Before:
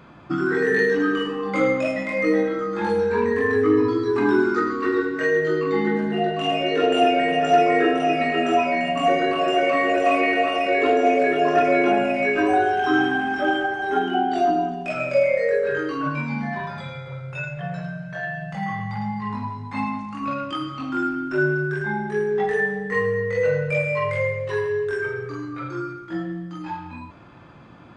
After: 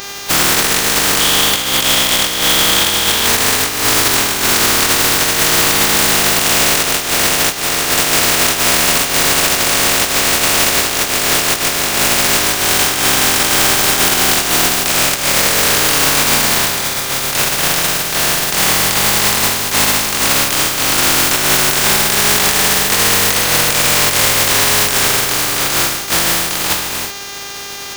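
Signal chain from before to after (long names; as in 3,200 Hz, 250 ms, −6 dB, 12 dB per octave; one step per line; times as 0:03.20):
compressing power law on the bin magnitudes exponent 0.12
0:01.20–0:03.27: parametric band 3,300 Hz +11 dB 0.23 octaves
compressor whose output falls as the input rises −23 dBFS, ratio −0.5
hum with harmonics 400 Hz, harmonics 17, −43 dBFS 0 dB per octave
boost into a limiter +14.5 dB
level −1 dB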